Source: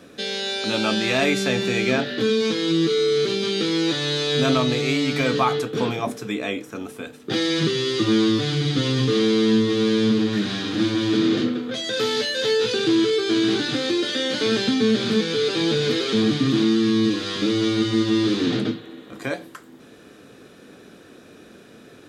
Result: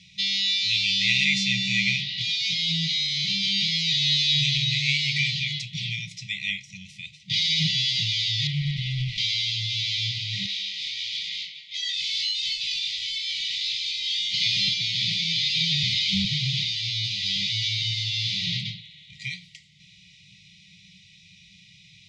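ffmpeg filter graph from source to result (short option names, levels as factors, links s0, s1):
-filter_complex "[0:a]asettb=1/sr,asplit=3[s0][s1][s2];[s0]atrim=end=8.474[s3];[s1]atrim=start=8.47:end=9.18,asetpts=PTS-STARTPTS,afade=t=in:d=0.004:c=qsin,afade=t=out:st=0.706:d=0.004:c=qsin,lowpass=2300,asoftclip=type=hard:threshold=0.106[s4];[s2]atrim=start=9.176[s5];[s3][s4]acrossfade=d=0.004:c1=hsin:c2=qsin[s6];[s6][s5]acrossfade=d=0.004:c1=qsin:c2=hsin,asettb=1/sr,asplit=3[s7][s8][s9];[s7]atrim=end=10.464[s10];[s8]atrim=start=10.46:end=14.34,asetpts=PTS-STARTPTS,afade=t=in:d=0.004:c=qsin,afade=t=out:st=3.876:d=0.004:c=qsin,highpass=560,flanger=delay=16.5:depth=5.8:speed=1.5,asoftclip=type=hard:threshold=0.0531[s11];[s9]atrim=start=14.336[s12];[s10][s11]acrossfade=d=0.004:c1=hsin:c2=qsin[s13];[s13][s12]acrossfade=d=0.004:c1=qsin:c2=hsin,asettb=1/sr,asplit=3[s14][s15][s16];[s14]atrim=end=15.834[s17];[s15]atrim=start=15.83:end=16.25,asetpts=PTS-STARTPTS,afade=t=in:d=0.004:c=qsin,afade=t=out:st=0.416:d=0.004:c=qsin,afreqshift=-22,asoftclip=type=hard:threshold=0.188[s18];[s16]atrim=start=16.246[s19];[s17][s18]acrossfade=d=0.004:c1=hsin:c2=qsin[s20];[s20][s19]acrossfade=d=0.004:c1=qsin:c2=hsin,highshelf=f=2100:g=9.5,afftfilt=real='re*(1-between(b*sr/4096,200,1900))':imag='im*(1-between(b*sr/4096,200,1900))':win_size=4096:overlap=0.75,lowpass=f=5500:w=0.5412,lowpass=f=5500:w=1.3066,volume=0.794"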